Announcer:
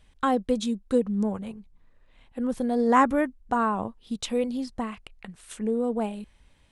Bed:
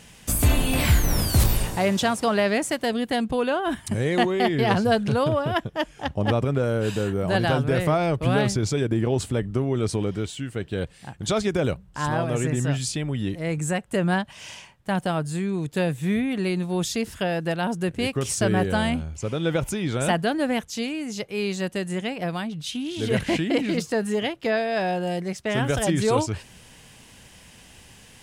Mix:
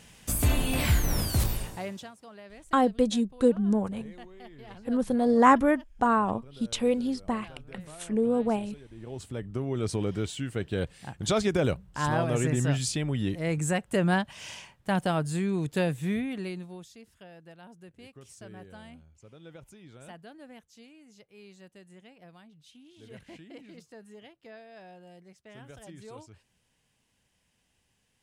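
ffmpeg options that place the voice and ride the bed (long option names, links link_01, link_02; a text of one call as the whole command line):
ffmpeg -i stem1.wav -i stem2.wav -filter_complex "[0:a]adelay=2500,volume=1dB[link_01];[1:a]volume=19.5dB,afade=type=out:start_time=1.19:duration=0.93:silence=0.0841395,afade=type=in:start_time=8.93:duration=1.38:silence=0.0595662,afade=type=out:start_time=15.68:duration=1.18:silence=0.0749894[link_02];[link_01][link_02]amix=inputs=2:normalize=0" out.wav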